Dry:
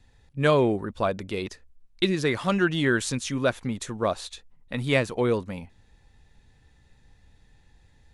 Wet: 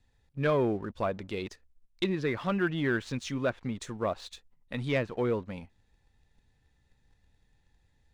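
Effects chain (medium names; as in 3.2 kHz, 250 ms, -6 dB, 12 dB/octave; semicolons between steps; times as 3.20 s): low-pass that closes with the level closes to 2.6 kHz, closed at -21 dBFS; waveshaping leveller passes 1; trim -8.5 dB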